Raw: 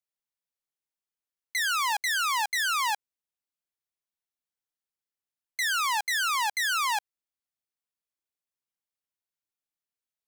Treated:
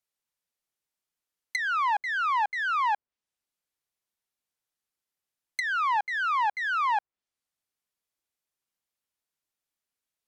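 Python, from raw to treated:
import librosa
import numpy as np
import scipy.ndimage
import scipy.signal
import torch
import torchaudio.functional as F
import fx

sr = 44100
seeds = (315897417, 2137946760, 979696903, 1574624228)

y = fx.env_lowpass_down(x, sr, base_hz=1400.0, full_db=-29.5)
y = y * 10.0 ** (4.5 / 20.0)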